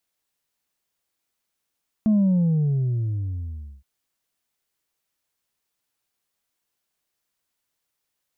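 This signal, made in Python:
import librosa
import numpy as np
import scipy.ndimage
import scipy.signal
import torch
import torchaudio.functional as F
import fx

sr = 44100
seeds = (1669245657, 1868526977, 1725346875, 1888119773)

y = fx.sub_drop(sr, level_db=-15.5, start_hz=220.0, length_s=1.77, drive_db=2, fade_s=1.72, end_hz=65.0)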